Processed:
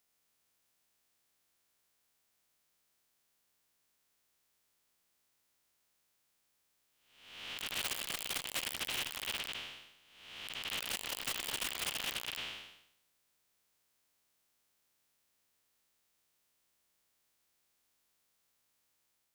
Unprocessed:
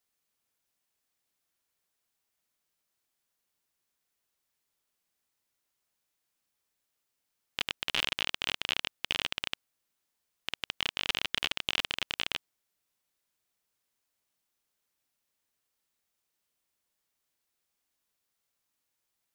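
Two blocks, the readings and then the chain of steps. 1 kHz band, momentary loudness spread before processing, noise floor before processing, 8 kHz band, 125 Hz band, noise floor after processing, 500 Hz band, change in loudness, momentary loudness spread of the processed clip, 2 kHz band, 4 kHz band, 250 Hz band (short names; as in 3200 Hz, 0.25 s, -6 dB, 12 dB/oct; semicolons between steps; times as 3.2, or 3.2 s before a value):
-4.5 dB, 8 LU, -83 dBFS, +5.0 dB, -5.0 dB, -78 dBFS, -4.0 dB, -5.5 dB, 12 LU, -6.0 dB, -6.5 dB, -4.5 dB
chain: time blur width 0.483 s; wrapped overs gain 33.5 dB; core saturation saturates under 510 Hz; gain +6 dB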